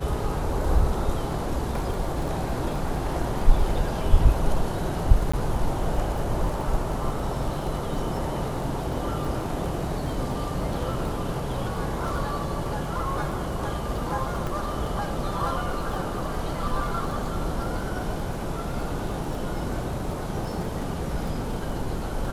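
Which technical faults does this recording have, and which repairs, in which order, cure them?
crackle 21/s -32 dBFS
5.32–5.33 gap 15 ms
14.47 pop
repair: de-click; interpolate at 5.32, 15 ms

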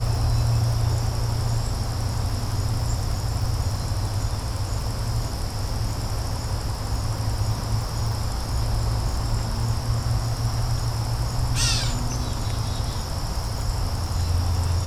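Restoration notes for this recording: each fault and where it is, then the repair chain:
crackle 27/s -31 dBFS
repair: de-click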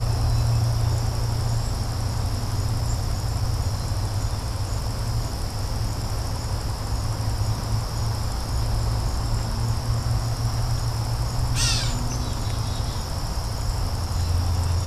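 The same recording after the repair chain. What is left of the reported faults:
none

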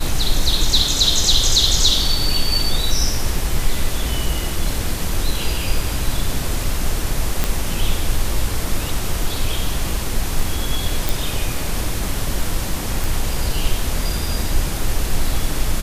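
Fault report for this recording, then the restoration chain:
7.44 pop -3 dBFS
11.09 pop
13.04 pop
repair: de-click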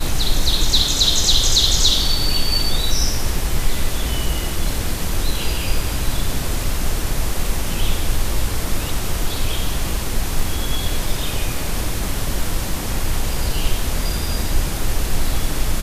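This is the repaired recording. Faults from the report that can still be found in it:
none

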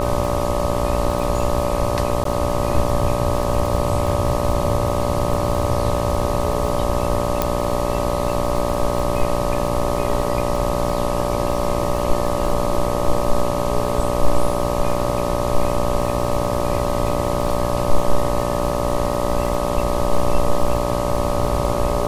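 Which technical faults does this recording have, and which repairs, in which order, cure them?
buzz 60 Hz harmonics 21 -23 dBFS
crackle 45/s -26 dBFS
tone 580 Hz -24 dBFS
2.24–2.25 gap 13 ms
7.42 pop -3 dBFS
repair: de-click; notch 580 Hz, Q 30; de-hum 60 Hz, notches 21; interpolate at 2.24, 13 ms

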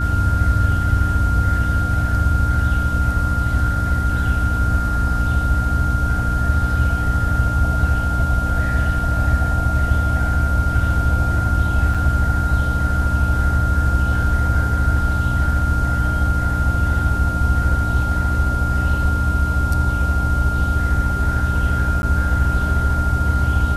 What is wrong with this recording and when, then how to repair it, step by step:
hum 60 Hz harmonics 5 -22 dBFS
tone 1400 Hz -23 dBFS
11.94–11.95 gap 5.8 ms
22.02–22.03 gap 11 ms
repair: notch 1400 Hz, Q 30; de-hum 60 Hz, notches 5; interpolate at 11.94, 5.8 ms; interpolate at 22.02, 11 ms

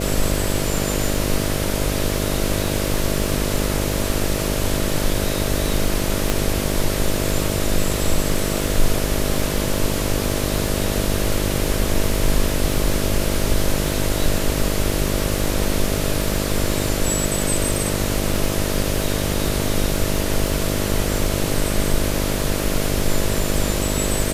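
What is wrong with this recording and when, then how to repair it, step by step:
buzz 50 Hz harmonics 13 -24 dBFS
crackle 48/s -25 dBFS
6.3 pop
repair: de-click; de-hum 50 Hz, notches 13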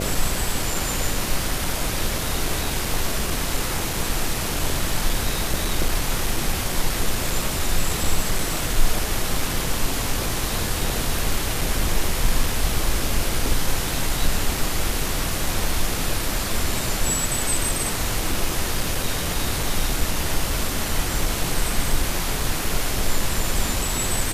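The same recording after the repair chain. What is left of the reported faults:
6.3 pop

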